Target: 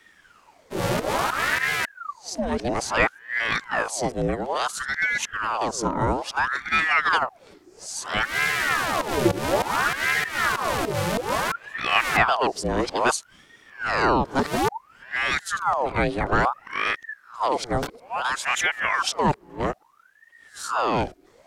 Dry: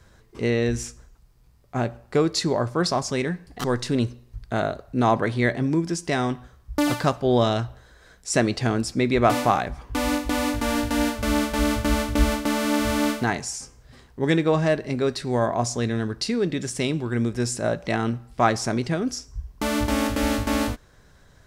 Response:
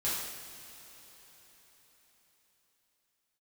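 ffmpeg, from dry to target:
-af "areverse,afreqshift=-63,aeval=exprs='val(0)*sin(2*PI*1100*n/s+1100*0.7/0.59*sin(2*PI*0.59*n/s))':c=same,volume=2dB"

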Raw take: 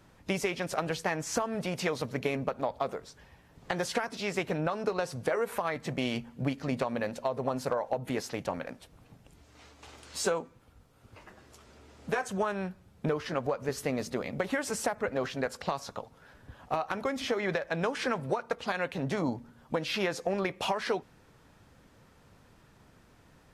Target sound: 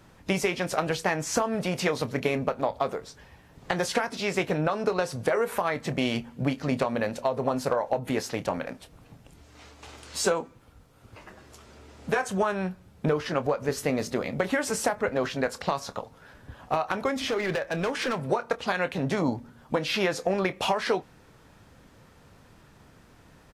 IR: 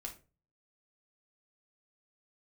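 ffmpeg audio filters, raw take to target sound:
-filter_complex "[0:a]asettb=1/sr,asplit=3[a][b][c];[a]atrim=end=17.204[d];[b]atrim=start=17.2:end=18.24,asetpts=PTS-STARTPTS,afade=t=in:d=0.004:c=qsin,afade=t=out:st=1.036:d=0.004:c=qsin,volume=28dB,asoftclip=hard,volume=-28dB[e];[c]atrim=start=18.236[f];[d][e]acrossfade=d=0.004:c1=hsin:c2=qsin[g];[g][f]acrossfade=d=0.004:c1=qsin:c2=hsin,asplit=2[h][i];[i]adelay=27,volume=-13.5dB[j];[h][j]amix=inputs=2:normalize=0,volume=4.5dB"

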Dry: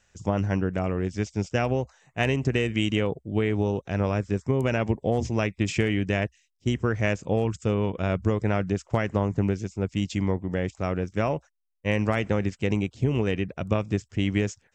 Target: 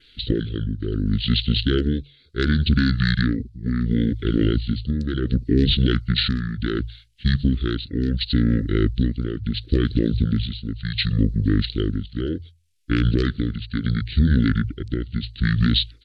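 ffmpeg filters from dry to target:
-af "tremolo=f=0.76:d=0.67,bandreject=f=50:t=h:w=6,bandreject=f=100:t=h:w=6,bandreject=f=150:t=h:w=6,bandreject=f=200:t=h:w=6,bandreject=f=250:t=h:w=6,asoftclip=type=tanh:threshold=-11.5dB,asetrate=26990,aresample=44100,atempo=1.63392,acontrast=81,asuperstop=centerf=890:order=8:qfactor=0.89,highshelf=f=2.1k:t=q:w=1.5:g=8,asetrate=40517,aresample=44100,adynamicequalizer=threshold=0.00316:dfrequency=4000:dqfactor=3.5:tfrequency=4000:tqfactor=3.5:attack=5:release=100:ratio=0.375:range=3:mode=boostabove:tftype=bell,alimiter=level_in=10.5dB:limit=-1dB:release=50:level=0:latency=1,volume=-7.5dB"

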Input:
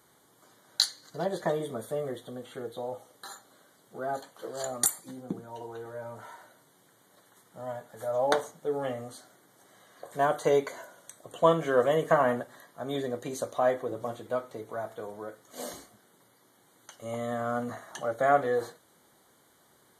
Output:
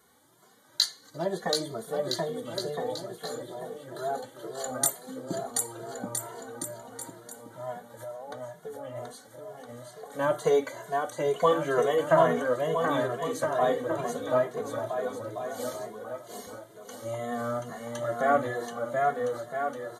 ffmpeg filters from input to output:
-filter_complex "[0:a]asplit=3[a][b][c];[a]afade=t=out:st=7.92:d=0.02[d];[b]acompressor=threshold=-39dB:ratio=10,afade=t=in:st=7.92:d=0.02,afade=t=out:st=8.95:d=0.02[e];[c]afade=t=in:st=8.95:d=0.02[f];[d][e][f]amix=inputs=3:normalize=0,aecho=1:1:730|1314|1781|2155|2454:0.631|0.398|0.251|0.158|0.1,asplit=2[g][h];[h]adelay=2.4,afreqshift=2.2[i];[g][i]amix=inputs=2:normalize=1,volume=3dB"

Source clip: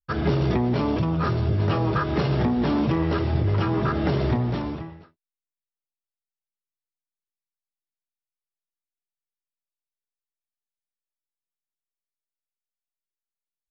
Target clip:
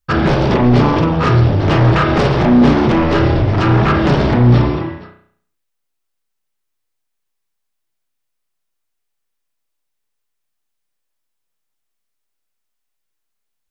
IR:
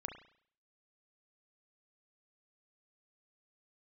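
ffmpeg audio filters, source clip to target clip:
-filter_complex "[0:a]aeval=exprs='0.299*sin(PI/2*2.82*val(0)/0.299)':c=same[a];[1:a]atrim=start_sample=2205[b];[a][b]afir=irnorm=-1:irlink=0,volume=4dB"

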